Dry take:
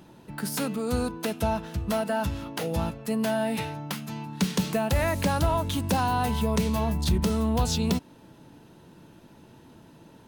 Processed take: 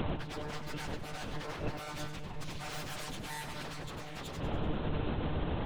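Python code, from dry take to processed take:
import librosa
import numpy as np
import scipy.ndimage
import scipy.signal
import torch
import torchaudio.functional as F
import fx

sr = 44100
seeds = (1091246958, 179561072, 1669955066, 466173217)

p1 = fx.spec_box(x, sr, start_s=0.49, length_s=0.35, low_hz=870.0, high_hz=1800.0, gain_db=-30)
p2 = fx.lpc_monotone(p1, sr, seeds[0], pitch_hz=150.0, order=8)
p3 = 10.0 ** (-32.5 / 20.0) * (np.abs((p2 / 10.0 ** (-32.5 / 20.0) + 3.0) % 4.0 - 2.0) - 1.0)
p4 = fx.over_compress(p3, sr, threshold_db=-45.0, ratio=-0.5)
p5 = fx.stretch_vocoder_free(p4, sr, factor=0.55)
p6 = p5 + fx.echo_split(p5, sr, split_hz=650.0, low_ms=364, high_ms=97, feedback_pct=52, wet_db=-11.0, dry=0)
y = p6 * librosa.db_to_amplitude(13.0)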